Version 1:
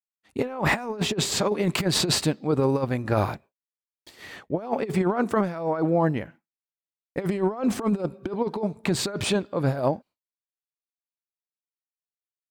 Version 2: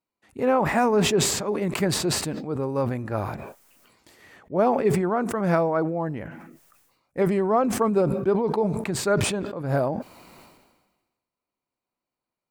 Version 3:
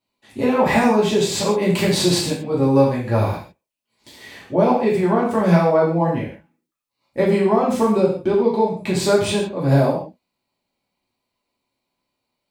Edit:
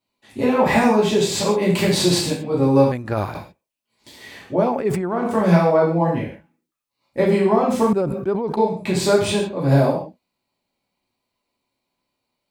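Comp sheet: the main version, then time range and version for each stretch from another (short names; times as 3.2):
3
2.92–3.35 from 1
4.65–5.2 from 2, crossfade 0.24 s
7.93–8.57 from 2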